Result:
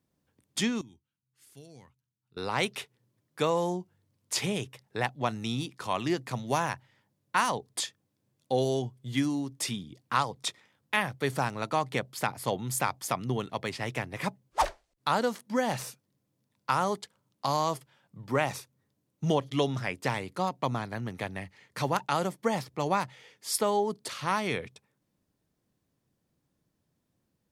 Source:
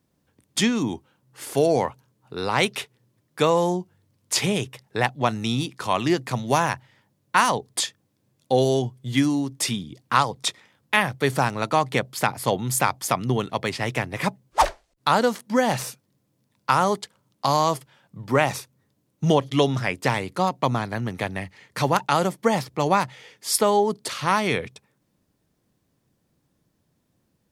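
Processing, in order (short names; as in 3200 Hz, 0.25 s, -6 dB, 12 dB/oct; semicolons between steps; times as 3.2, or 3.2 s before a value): 0.81–2.37 passive tone stack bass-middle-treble 6-0-2; gain -7.5 dB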